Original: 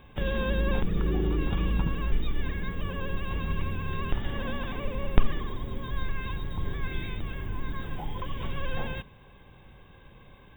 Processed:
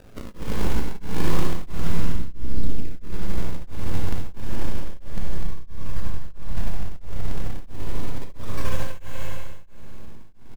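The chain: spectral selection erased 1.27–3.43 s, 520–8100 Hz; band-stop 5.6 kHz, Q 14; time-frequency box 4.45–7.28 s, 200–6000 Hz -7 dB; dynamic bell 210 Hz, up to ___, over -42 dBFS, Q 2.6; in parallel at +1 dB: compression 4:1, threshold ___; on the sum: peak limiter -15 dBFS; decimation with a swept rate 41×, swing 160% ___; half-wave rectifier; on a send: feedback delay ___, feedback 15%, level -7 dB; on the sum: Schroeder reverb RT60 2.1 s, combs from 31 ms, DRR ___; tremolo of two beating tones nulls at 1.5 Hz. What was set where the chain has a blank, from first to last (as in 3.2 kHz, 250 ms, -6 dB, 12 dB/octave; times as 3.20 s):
+3 dB, -39 dBFS, 0.31 Hz, 248 ms, -1.5 dB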